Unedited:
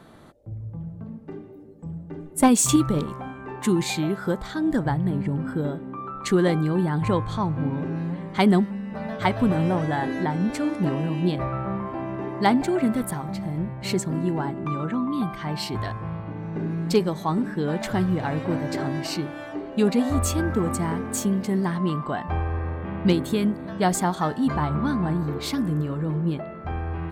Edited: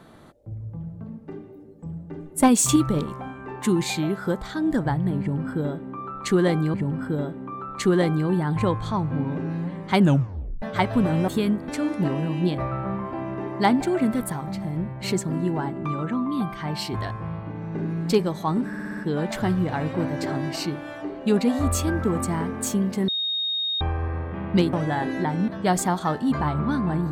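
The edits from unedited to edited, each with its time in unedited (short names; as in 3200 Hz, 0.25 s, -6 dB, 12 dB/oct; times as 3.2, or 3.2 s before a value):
5.2–6.74 loop, 2 plays
8.44 tape stop 0.64 s
9.74–10.49 swap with 23.24–23.64
17.48 stutter 0.06 s, 6 plays
21.59–22.32 bleep 3720 Hz -23 dBFS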